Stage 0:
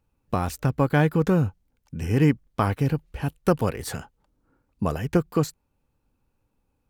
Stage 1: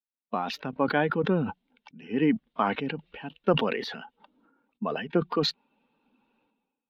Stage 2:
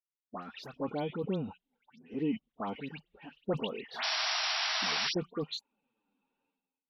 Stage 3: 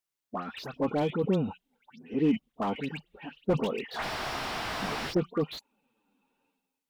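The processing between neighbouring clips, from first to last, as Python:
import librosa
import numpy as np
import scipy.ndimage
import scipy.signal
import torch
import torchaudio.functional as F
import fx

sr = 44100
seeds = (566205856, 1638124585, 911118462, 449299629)

y1 = fx.bin_expand(x, sr, power=1.5)
y1 = scipy.signal.sosfilt(scipy.signal.ellip(3, 1.0, 40, [210.0, 3500.0], 'bandpass', fs=sr, output='sos'), y1)
y1 = fx.sustainer(y1, sr, db_per_s=47.0)
y2 = fx.env_flanger(y1, sr, rest_ms=11.3, full_db=-23.5)
y2 = fx.spec_paint(y2, sr, seeds[0], shape='noise', start_s=3.94, length_s=1.12, low_hz=620.0, high_hz=5800.0, level_db=-24.0)
y2 = fx.dispersion(y2, sr, late='highs', ms=102.0, hz=2100.0)
y2 = y2 * librosa.db_to_amplitude(-8.0)
y3 = fx.slew_limit(y2, sr, full_power_hz=19.0)
y3 = y3 * librosa.db_to_amplitude(7.0)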